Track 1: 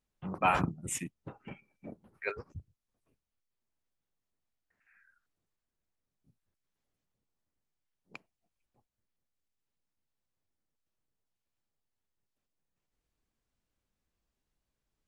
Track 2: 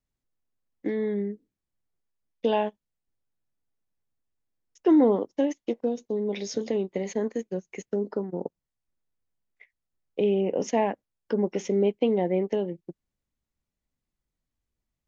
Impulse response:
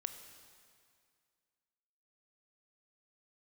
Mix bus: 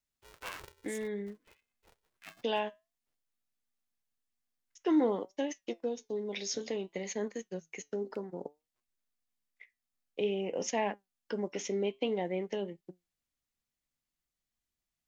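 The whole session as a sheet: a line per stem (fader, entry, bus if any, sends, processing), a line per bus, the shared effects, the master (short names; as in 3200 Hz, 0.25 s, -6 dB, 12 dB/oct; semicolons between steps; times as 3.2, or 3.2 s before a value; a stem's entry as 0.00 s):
-17.0 dB, 0.00 s, no send, polarity switched at an audio rate 240 Hz
0.0 dB, 0.00 s, no send, flange 0.55 Hz, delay 4.7 ms, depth 3.3 ms, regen +81%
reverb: off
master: tilt shelf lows -6 dB, about 1100 Hz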